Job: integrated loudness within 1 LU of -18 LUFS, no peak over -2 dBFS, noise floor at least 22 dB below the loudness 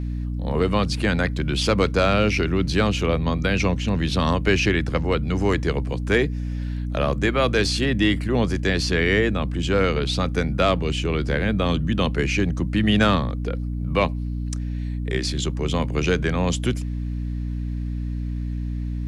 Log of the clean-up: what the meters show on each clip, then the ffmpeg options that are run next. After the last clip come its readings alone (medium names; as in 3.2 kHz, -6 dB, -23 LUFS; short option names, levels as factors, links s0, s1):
hum 60 Hz; highest harmonic 300 Hz; hum level -24 dBFS; loudness -22.5 LUFS; peak level -6.5 dBFS; loudness target -18.0 LUFS
-> -af "bandreject=f=60:t=h:w=4,bandreject=f=120:t=h:w=4,bandreject=f=180:t=h:w=4,bandreject=f=240:t=h:w=4,bandreject=f=300:t=h:w=4"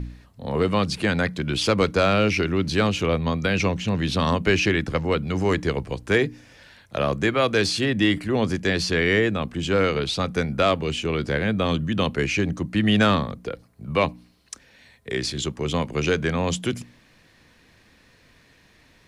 hum not found; loudness -23.0 LUFS; peak level -7.5 dBFS; loudness target -18.0 LUFS
-> -af "volume=1.78"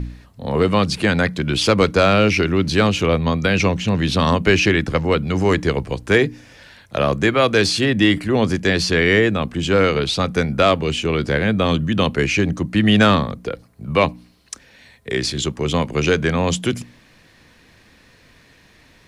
loudness -18.0 LUFS; peak level -2.5 dBFS; noise floor -52 dBFS